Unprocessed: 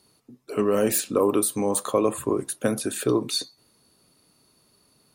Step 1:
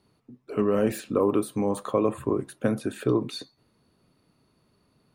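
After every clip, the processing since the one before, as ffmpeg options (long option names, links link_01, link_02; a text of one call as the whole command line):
ffmpeg -i in.wav -af "bass=frequency=250:gain=5,treble=frequency=4000:gain=-14,volume=-2.5dB" out.wav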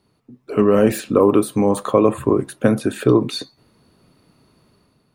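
ffmpeg -i in.wav -af "dynaudnorm=framelen=120:gausssize=7:maxgain=7.5dB,volume=2.5dB" out.wav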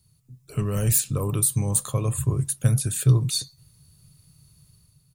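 ffmpeg -i in.wav -af "firequalizer=gain_entry='entry(150,0);entry(220,-24);entry(320,-25);entry(3300,-10);entry(7300,5)':delay=0.05:min_phase=1,volume=6dB" out.wav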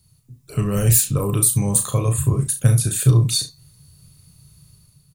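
ffmpeg -i in.wav -af "aecho=1:1:35|69:0.473|0.178,volume=4.5dB" out.wav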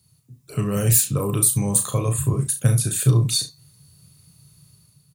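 ffmpeg -i in.wav -af "highpass=100,volume=-1dB" out.wav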